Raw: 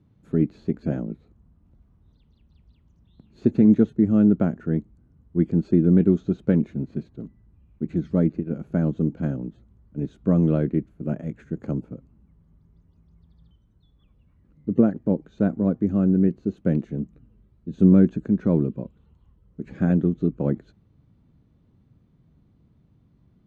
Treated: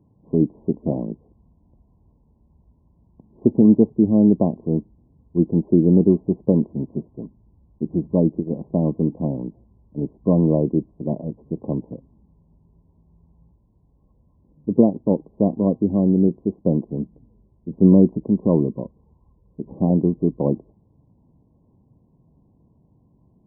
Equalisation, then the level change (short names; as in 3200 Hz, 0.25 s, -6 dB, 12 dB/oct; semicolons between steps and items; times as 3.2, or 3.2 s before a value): brick-wall FIR low-pass 1100 Hz; low shelf 280 Hz -8.5 dB; +7.5 dB